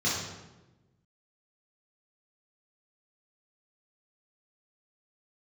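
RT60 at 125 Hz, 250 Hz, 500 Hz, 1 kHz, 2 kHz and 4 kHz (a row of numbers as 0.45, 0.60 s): 1.6, 1.5, 1.2, 1.0, 0.90, 0.75 s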